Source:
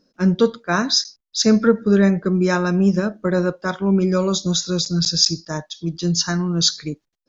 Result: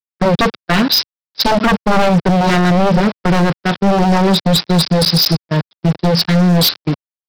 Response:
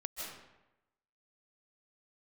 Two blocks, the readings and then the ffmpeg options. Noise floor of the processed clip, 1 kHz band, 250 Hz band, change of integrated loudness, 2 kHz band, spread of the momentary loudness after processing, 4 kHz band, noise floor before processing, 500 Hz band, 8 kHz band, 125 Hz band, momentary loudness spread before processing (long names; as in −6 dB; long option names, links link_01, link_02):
below −85 dBFS, +12.5 dB, +4.0 dB, +5.0 dB, +7.0 dB, 6 LU, +5.5 dB, −76 dBFS, +4.0 dB, can't be measured, +7.5 dB, 9 LU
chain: -af "equalizer=frequency=160:width_type=o:width=0.67:gain=9,equalizer=frequency=400:width_type=o:width=0.67:gain=3,equalizer=frequency=4000:width_type=o:width=0.67:gain=5,aresample=11025,aeval=exprs='val(0)*gte(abs(val(0)),0.0596)':channel_layout=same,aresample=44100,agate=range=-31dB:threshold=-22dB:ratio=16:detection=peak,highpass=110,aeval=exprs='0.224*(abs(mod(val(0)/0.224+3,4)-2)-1)':channel_layout=same,volume=6.5dB"